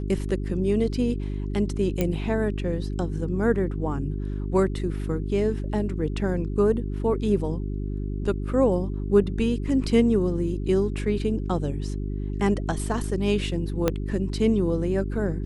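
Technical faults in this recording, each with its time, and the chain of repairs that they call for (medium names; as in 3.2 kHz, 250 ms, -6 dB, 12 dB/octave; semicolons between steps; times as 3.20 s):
hum 50 Hz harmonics 8 -29 dBFS
2.01 s: pop -11 dBFS
13.88 s: pop -8 dBFS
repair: de-click; de-hum 50 Hz, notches 8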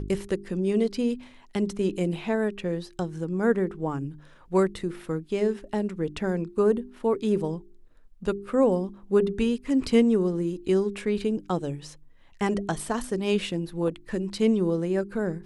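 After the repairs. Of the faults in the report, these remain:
13.88 s: pop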